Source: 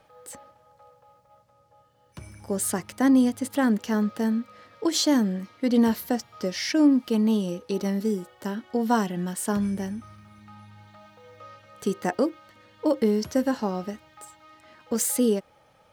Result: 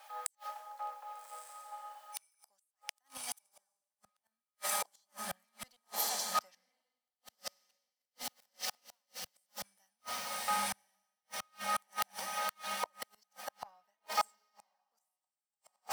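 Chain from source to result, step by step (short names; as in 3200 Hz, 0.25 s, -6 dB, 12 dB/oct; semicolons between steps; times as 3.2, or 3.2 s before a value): 7.05–9.35 switching dead time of 0.17 ms; HPF 99 Hz 24 dB/oct; tilt +4.5 dB/oct; flipped gate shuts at -16 dBFS, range -28 dB; soft clip -25.5 dBFS, distortion -12 dB; diffused feedback echo 1.211 s, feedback 60%, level -4 dB; flipped gate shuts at -33 dBFS, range -36 dB; resonant low shelf 530 Hz -12 dB, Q 3; three-band expander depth 100%; gain +8 dB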